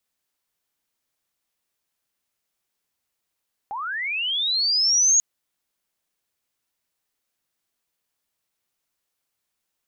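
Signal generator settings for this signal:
glide linear 770 Hz → 6,700 Hz −27.5 dBFS → −13.5 dBFS 1.49 s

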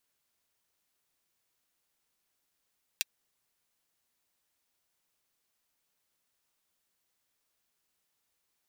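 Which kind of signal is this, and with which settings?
closed synth hi-hat, high-pass 2,600 Hz, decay 0.03 s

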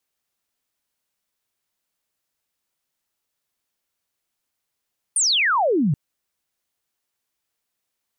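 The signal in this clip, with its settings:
single falling chirp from 9,700 Hz, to 130 Hz, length 0.78 s sine, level −16 dB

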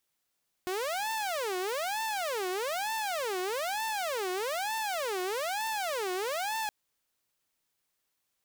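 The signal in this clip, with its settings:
siren wail 363–891 Hz 1.1 per second saw −28 dBFS 6.02 s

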